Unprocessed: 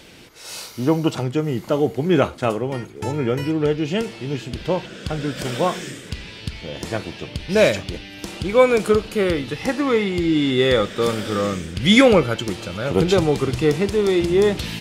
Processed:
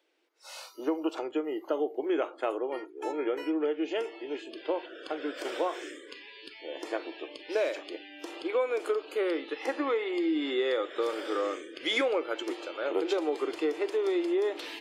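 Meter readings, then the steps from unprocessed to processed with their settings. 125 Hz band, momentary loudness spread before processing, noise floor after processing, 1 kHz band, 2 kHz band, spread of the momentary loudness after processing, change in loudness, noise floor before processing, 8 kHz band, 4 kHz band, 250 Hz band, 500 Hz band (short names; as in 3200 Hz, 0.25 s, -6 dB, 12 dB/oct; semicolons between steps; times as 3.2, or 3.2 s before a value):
under -40 dB, 16 LU, -50 dBFS, -10.0 dB, -11.5 dB, 13 LU, -11.5 dB, -39 dBFS, -16.5 dB, -12.5 dB, -12.5 dB, -10.5 dB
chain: spectral noise reduction 20 dB; elliptic high-pass 310 Hz, stop band 40 dB; high shelf 4300 Hz -10.5 dB; compressor 6:1, threshold -20 dBFS, peak gain reduction 11 dB; gain -5 dB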